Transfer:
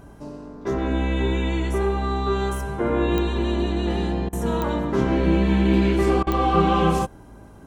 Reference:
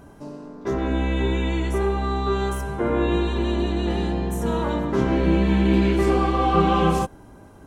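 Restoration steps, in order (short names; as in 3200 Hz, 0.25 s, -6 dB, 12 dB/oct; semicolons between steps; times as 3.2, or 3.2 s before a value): de-click; de-hum 53.7 Hz, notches 5; interpolate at 4.29/6.23, 37 ms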